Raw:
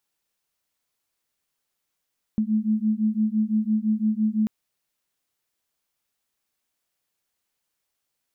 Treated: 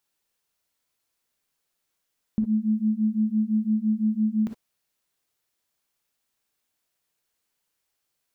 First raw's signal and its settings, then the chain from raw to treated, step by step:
beating tones 213 Hz, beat 5.9 Hz, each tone -23 dBFS 2.09 s
non-linear reverb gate 80 ms rising, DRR 6 dB

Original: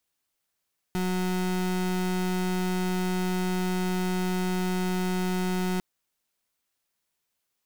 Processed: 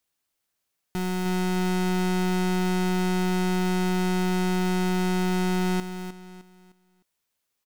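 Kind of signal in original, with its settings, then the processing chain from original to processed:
pulse 183 Hz, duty 32% -27 dBFS 4.85 s
on a send: feedback echo 0.306 s, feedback 35%, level -10.5 dB

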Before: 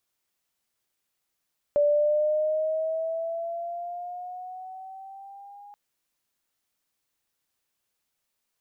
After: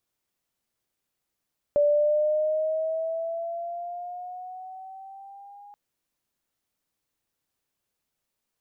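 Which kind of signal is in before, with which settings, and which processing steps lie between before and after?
gliding synth tone sine, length 3.98 s, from 581 Hz, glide +6 st, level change -26.5 dB, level -17.5 dB
tilt shelf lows +3.5 dB, about 700 Hz

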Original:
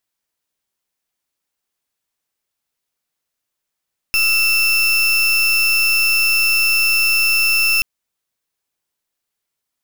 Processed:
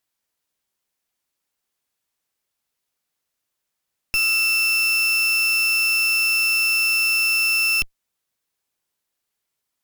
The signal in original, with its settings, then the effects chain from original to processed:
pulse 2670 Hz, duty 33% -15 dBFS 3.68 s
one-sided clip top -22 dBFS, bottom -16 dBFS

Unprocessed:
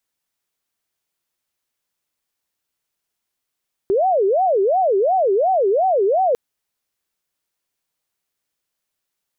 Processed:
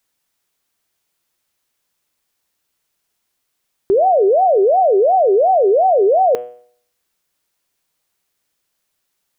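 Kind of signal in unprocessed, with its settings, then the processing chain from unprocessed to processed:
siren wail 382–766 Hz 2.8/s sine -13.5 dBFS 2.45 s
de-hum 122 Hz, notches 27; in parallel at +3 dB: limiter -19.5 dBFS

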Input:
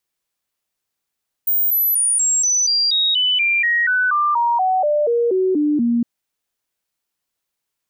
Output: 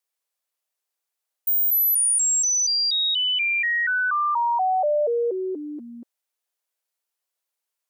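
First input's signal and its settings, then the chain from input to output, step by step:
stepped sine 15100 Hz down, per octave 3, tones 19, 0.24 s, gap 0.00 s -14 dBFS
ladder high-pass 380 Hz, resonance 25%; bell 12000 Hz +3.5 dB 1.5 oct

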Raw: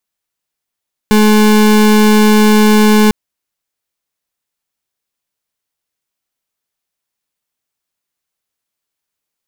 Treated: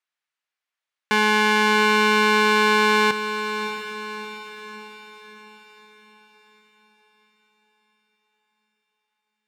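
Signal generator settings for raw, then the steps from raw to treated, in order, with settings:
pulse 213 Hz, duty 33% -7.5 dBFS 2.00 s
band-pass 1800 Hz, Q 0.93; on a send: diffused feedback echo 0.655 s, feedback 49%, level -9.5 dB

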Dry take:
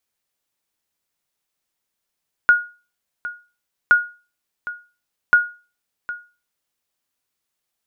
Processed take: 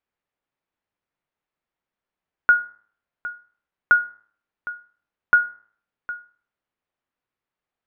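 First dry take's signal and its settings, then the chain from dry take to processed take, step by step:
sonar ping 1440 Hz, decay 0.33 s, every 1.42 s, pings 3, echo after 0.76 s, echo -16 dB -5 dBFS
LPF 2000 Hz 12 dB/oct; de-hum 107.8 Hz, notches 19

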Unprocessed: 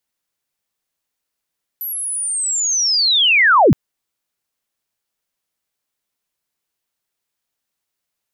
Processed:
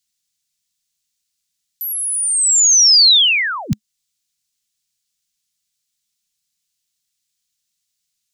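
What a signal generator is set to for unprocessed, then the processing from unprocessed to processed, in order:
chirp linear 12000 Hz -> 83 Hz -22.5 dBFS -> -6.5 dBFS 1.92 s
EQ curve 210 Hz 0 dB, 380 Hz -28 dB, 3900 Hz +7 dB, 7100 Hz +10 dB, 12000 Hz +2 dB; compressor 1.5:1, threshold -22 dBFS; dynamic EQ 4600 Hz, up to +4 dB, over -24 dBFS, Q 0.95

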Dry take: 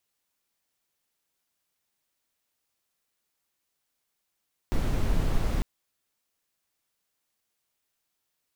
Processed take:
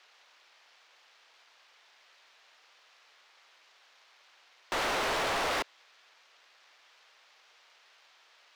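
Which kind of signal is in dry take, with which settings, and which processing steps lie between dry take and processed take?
noise brown, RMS -24 dBFS 0.90 s
median filter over 5 samples; three-band isolator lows -23 dB, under 410 Hz, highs -18 dB, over 6900 Hz; overdrive pedal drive 32 dB, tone 6600 Hz, clips at -24 dBFS

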